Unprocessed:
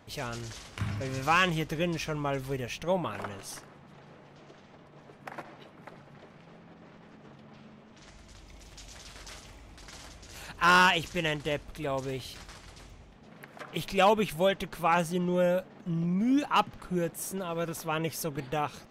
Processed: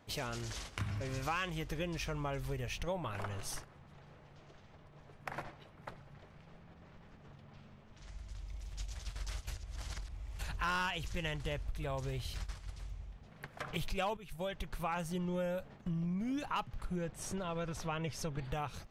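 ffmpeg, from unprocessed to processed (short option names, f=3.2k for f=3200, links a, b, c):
-filter_complex "[0:a]asettb=1/sr,asplit=3[a][b][c];[a]atrim=end=16.964[d];[b]atrim=start=16.96:end=18.45,asetpts=PTS-STARTPTS,afade=t=in:d=0.004:c=qsin,afade=t=out:st=1.486:d=0.004:c=qsin,lowpass=6.1k[e];[c]atrim=start=18.446[f];[d][e]acrossfade=d=0.004:c1=hsin:c2=qsin[g];[g][f]acrossfade=d=0.004:c1=qsin:c2=hsin,asplit=4[h][i][j][k];[h]atrim=end=9.472[l];[i]atrim=start=9.468:end=10.392,asetpts=PTS-STARTPTS,areverse[m];[j]atrim=start=10.388:end=14.17,asetpts=PTS-STARTPTS,afade=t=out:st=3.778:d=0.004:c=hsin:silence=0.158489[n];[k]atrim=start=14.17,asetpts=PTS-STARTPTS,afade=t=in:d=0.98:silence=0.158489[o];[l][m]acrossfade=d=0.004:c1=hsin:c2=hsin[p];[n][o]concat=n=2:v=0:a=1[q];[p][q]acrossfade=d=0.004:c1=hsin:c2=hsin,agate=range=-10dB:threshold=-46dB:ratio=16:detection=peak,asubboost=boost=7.5:cutoff=89,acompressor=threshold=-43dB:ratio=3,volume=4dB"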